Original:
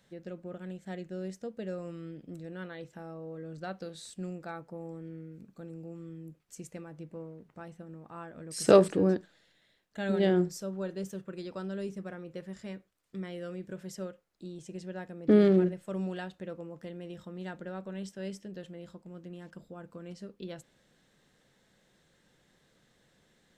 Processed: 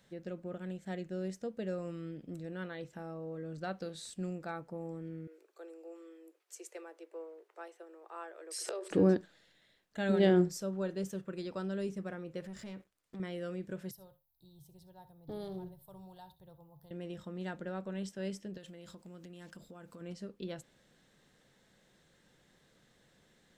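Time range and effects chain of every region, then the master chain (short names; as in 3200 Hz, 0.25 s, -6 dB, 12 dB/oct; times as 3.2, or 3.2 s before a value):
5.27–8.91 steep high-pass 350 Hz 72 dB/oct + compressor 12:1, threshold -36 dBFS
12.44–13.2 sample leveller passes 2 + compressor 2.5:1, threshold -47 dBFS
13.91–16.91 EQ curve 140 Hz 0 dB, 210 Hz -26 dB, 570 Hz -18 dB, 900 Hz -4 dB, 1300 Hz -22 dB, 2500 Hz -29 dB, 3800 Hz -7 dB, 7400 Hz -19 dB, 13000 Hz +14 dB + tapped delay 63/76 ms -16.5/-20 dB
18.57–20.01 high shelf 2200 Hz +10 dB + compressor 12:1, threshold -46 dBFS
whole clip: dry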